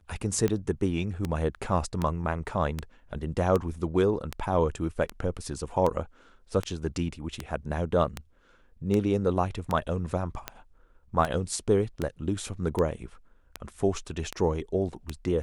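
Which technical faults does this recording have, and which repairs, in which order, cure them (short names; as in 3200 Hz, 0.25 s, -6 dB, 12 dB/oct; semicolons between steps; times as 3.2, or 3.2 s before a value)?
tick 78 rpm -15 dBFS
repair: de-click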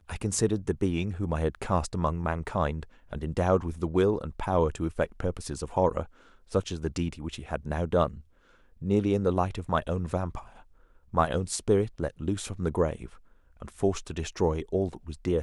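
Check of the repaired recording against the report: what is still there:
none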